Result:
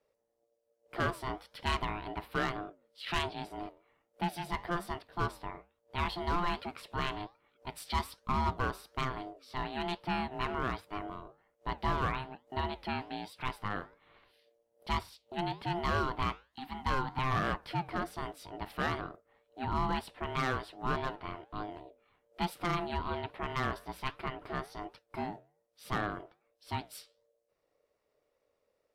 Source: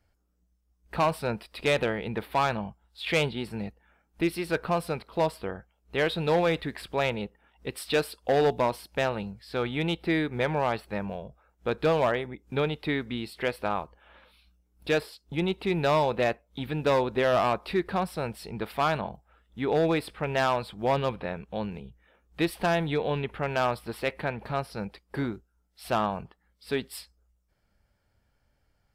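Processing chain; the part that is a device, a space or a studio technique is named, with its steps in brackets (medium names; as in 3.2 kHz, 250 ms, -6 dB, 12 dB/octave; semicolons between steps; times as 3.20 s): 16.44–17.19 s: steep high-pass 210 Hz; alien voice (ring modulator 520 Hz; flange 1.2 Hz, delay 4.7 ms, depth 7.3 ms, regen -84%)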